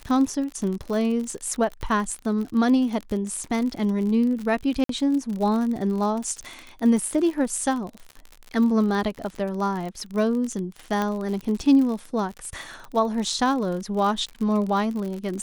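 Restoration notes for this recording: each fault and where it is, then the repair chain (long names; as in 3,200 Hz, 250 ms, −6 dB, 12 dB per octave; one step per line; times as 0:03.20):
surface crackle 56 per second −29 dBFS
0:04.84–0:04.89: drop-out 53 ms
0:11.02: click −13 dBFS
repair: click removal
repair the gap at 0:04.84, 53 ms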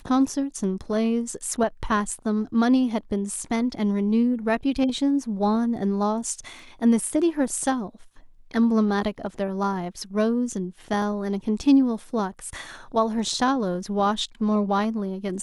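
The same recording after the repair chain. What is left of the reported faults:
0:11.02: click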